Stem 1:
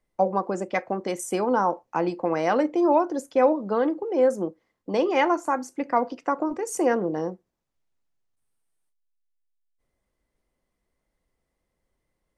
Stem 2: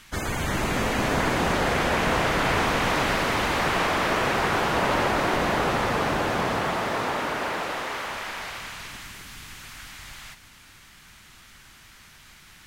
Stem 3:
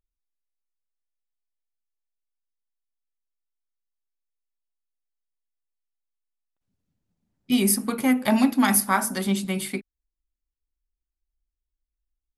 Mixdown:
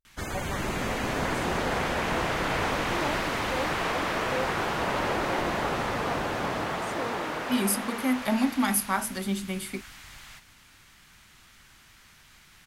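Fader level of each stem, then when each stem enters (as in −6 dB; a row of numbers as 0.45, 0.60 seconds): −14.5, −5.0, −5.5 decibels; 0.15, 0.05, 0.00 seconds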